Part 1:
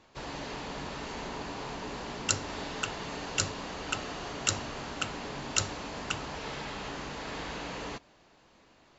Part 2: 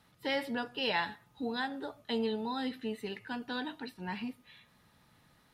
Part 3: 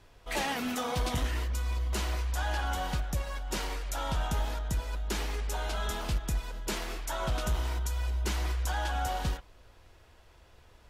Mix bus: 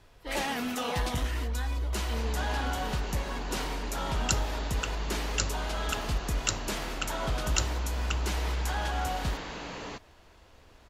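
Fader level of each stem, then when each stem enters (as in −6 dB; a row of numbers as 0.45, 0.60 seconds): −1.0, −7.0, 0.0 decibels; 2.00, 0.00, 0.00 seconds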